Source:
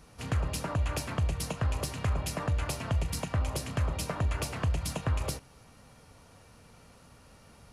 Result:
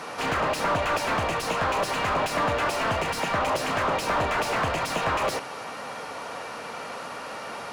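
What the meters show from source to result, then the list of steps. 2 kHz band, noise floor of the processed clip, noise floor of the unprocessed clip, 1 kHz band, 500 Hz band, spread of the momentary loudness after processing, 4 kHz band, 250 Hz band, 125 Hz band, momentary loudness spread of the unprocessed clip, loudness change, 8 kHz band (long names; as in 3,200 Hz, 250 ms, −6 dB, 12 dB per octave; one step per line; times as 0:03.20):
+14.0 dB, −37 dBFS, −57 dBFS, +15.5 dB, +12.5 dB, 11 LU, +9.5 dB, +5.0 dB, −6.0 dB, 1 LU, +5.5 dB, +3.0 dB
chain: high-pass filter 510 Hz 6 dB per octave
mid-hump overdrive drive 31 dB, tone 1,100 Hz, clips at −20.5 dBFS
level +6.5 dB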